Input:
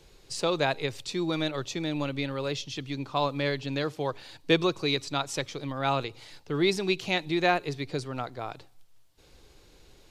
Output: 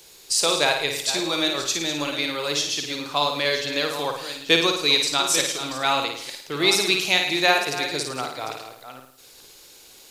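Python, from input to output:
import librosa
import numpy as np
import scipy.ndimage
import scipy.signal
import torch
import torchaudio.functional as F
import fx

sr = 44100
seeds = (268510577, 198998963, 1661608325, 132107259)

y = fx.reverse_delay(x, sr, ms=450, wet_db=-11.0)
y = fx.riaa(y, sr, side='recording')
y = fx.room_flutter(y, sr, wall_m=9.3, rt60_s=0.59)
y = F.gain(torch.from_numpy(y), 4.5).numpy()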